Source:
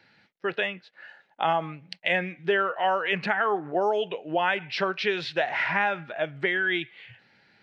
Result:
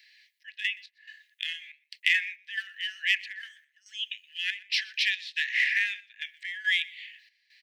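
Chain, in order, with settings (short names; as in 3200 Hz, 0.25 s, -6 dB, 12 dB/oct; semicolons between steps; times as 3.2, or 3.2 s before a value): tilt +3.5 dB/oct; in parallel at -3 dB: one-sided clip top -20 dBFS; on the sum: step gate "xx.x.xxx.xx.x" 70 bpm -12 dB; Chebyshev high-pass 1700 Hz, order 8; echo 0.123 s -23 dB; gain -4.5 dB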